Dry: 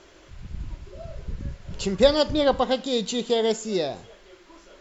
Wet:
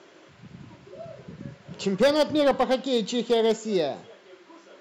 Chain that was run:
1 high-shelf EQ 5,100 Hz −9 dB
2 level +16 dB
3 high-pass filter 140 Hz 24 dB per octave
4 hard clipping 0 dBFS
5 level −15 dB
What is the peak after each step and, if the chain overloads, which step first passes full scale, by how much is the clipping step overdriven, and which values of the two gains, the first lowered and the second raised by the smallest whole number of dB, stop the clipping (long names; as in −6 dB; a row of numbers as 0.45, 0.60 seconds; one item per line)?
−5.5, +10.5, +10.0, 0.0, −15.0 dBFS
step 2, 10.0 dB
step 2 +6 dB, step 5 −5 dB